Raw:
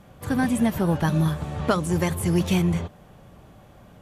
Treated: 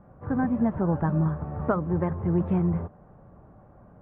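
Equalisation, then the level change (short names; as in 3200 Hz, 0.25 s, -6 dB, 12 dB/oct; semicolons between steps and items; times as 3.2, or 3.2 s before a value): LPF 1400 Hz 24 dB/oct; -2.5 dB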